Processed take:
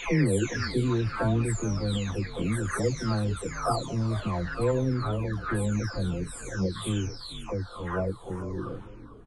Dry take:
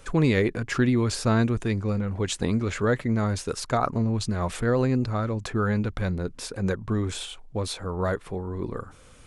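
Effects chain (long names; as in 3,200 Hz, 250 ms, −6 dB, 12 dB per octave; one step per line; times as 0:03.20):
every frequency bin delayed by itself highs early, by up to 842 ms
echo with shifted repeats 446 ms, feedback 40%, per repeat −68 Hz, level −13.5 dB
level −1 dB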